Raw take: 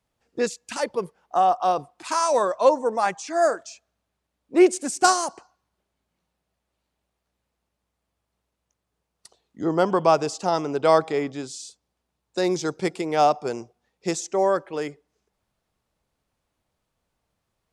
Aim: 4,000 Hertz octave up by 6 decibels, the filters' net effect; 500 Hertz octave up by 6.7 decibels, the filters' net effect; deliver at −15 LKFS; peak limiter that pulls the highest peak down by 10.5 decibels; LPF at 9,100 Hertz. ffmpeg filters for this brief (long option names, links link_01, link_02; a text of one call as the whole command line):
ffmpeg -i in.wav -af "lowpass=9100,equalizer=frequency=500:width_type=o:gain=8.5,equalizer=frequency=4000:width_type=o:gain=8,volume=6dB,alimiter=limit=-3dB:level=0:latency=1" out.wav